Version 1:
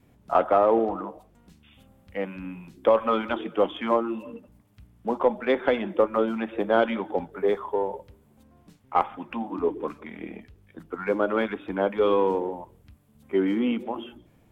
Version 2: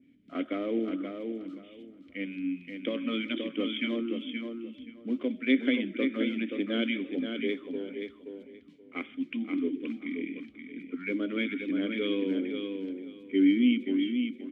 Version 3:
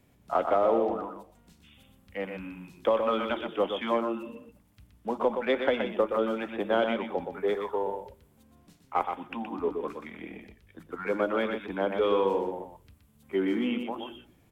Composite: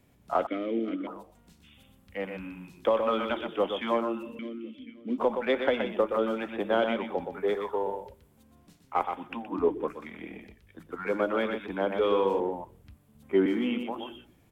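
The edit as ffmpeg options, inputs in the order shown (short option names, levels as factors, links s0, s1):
-filter_complex "[1:a]asplit=2[s0][s1];[0:a]asplit=2[s2][s3];[2:a]asplit=5[s4][s5][s6][s7][s8];[s4]atrim=end=0.472[s9];[s0]atrim=start=0.468:end=1.072[s10];[s5]atrim=start=1.068:end=4.392[s11];[s1]atrim=start=4.388:end=5.182[s12];[s6]atrim=start=5.178:end=9.54[s13];[s2]atrim=start=9.38:end=10[s14];[s7]atrim=start=9.84:end=12.402[s15];[s3]atrim=start=12.398:end=13.462[s16];[s8]atrim=start=13.458[s17];[s9][s10]acrossfade=d=0.004:c1=hsin:c2=hsin[s18];[s18][s11]acrossfade=d=0.004:c1=hsin:c2=hsin[s19];[s19][s12]acrossfade=d=0.004:c1=hsin:c2=hsin[s20];[s20][s13]acrossfade=d=0.004:c1=hsin:c2=hsin[s21];[s21][s14]acrossfade=d=0.16:c1=tri:c2=tri[s22];[s22][s15]acrossfade=d=0.16:c1=tri:c2=tri[s23];[s23][s16]acrossfade=d=0.004:c1=hsin:c2=hsin[s24];[s24][s17]acrossfade=d=0.004:c1=hsin:c2=hsin"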